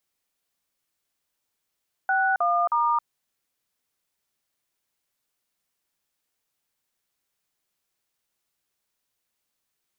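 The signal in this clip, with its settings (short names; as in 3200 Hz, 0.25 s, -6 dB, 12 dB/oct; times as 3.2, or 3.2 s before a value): DTMF "61*", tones 0.27 s, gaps 44 ms, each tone -22 dBFS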